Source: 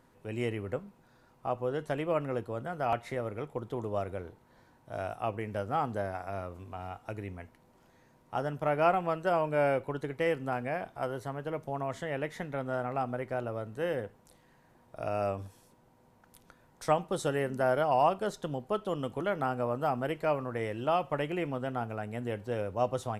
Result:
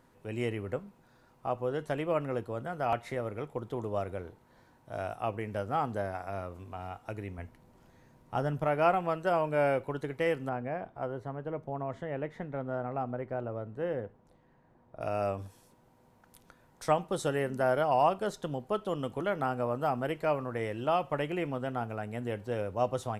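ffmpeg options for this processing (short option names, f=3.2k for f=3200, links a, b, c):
-filter_complex "[0:a]asettb=1/sr,asplit=3[a][b][c];[a]atrim=end=7.384[d];[b]atrim=start=7.38:end=8.65,asetpts=PTS-STARTPTS,afade=t=in:d=0.004:c=qsin,afade=t=out:st=1.266:d=0.004:c=qsin,lowshelf=f=200:g=8[e];[c]atrim=start=8.646[f];[d][e]acrossfade=d=0.004:c1=hsin:c2=qsin[g];[g][f]acrossfade=d=0.004:c1=qsin:c2=hsin,asettb=1/sr,asplit=3[h][i][j];[h]atrim=end=10.494[k];[i]atrim=start=10.49:end=15.01,asetpts=PTS-STARTPTS,afade=t=in:d=0.004:c=qsin,afade=t=out:st=4.516:d=0.004:c=qsin,lowpass=f=1k:p=1[l];[j]atrim=start=15.006[m];[k][l]acrossfade=d=0.004:c1=hsin:c2=qsin[n];[n][m]acrossfade=d=0.004:c1=qsin:c2=hsin"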